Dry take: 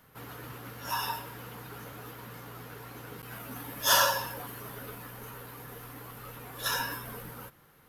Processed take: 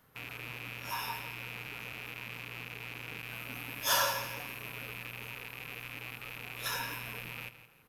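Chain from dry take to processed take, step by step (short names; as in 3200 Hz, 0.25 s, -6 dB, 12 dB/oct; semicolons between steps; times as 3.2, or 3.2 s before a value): rattling part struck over -50 dBFS, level -25 dBFS; feedback echo 0.167 s, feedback 34%, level -13.5 dB; gain -5.5 dB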